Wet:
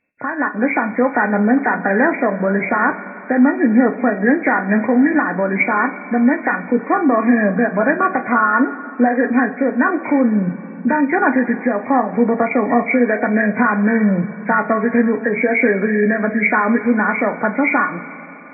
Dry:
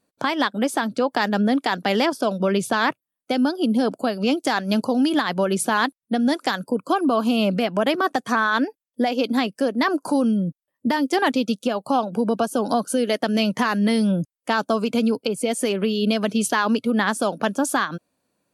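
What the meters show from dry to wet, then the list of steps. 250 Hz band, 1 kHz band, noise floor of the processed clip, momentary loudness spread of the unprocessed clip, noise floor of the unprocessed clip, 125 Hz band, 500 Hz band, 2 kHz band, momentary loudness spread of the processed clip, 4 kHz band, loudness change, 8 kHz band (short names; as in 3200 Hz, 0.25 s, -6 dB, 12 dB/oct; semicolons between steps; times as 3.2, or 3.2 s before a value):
+5.5 dB, +5.0 dB, -33 dBFS, 4 LU, -84 dBFS, +4.5 dB, +5.0 dB, +8.5 dB, 5 LU, under -40 dB, +5.5 dB, under -40 dB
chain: nonlinear frequency compression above 1400 Hz 4:1; AGC; two-slope reverb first 0.25 s, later 3.8 s, from -18 dB, DRR 5 dB; gain -3 dB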